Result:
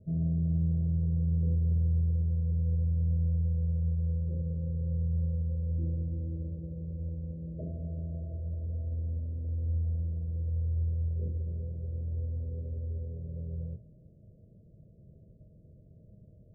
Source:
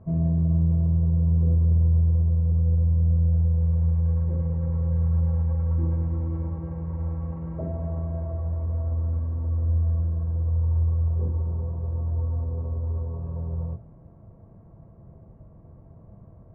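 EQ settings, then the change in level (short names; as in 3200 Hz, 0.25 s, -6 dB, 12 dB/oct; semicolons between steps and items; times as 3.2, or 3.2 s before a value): rippled Chebyshev low-pass 630 Hz, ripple 3 dB; -6.0 dB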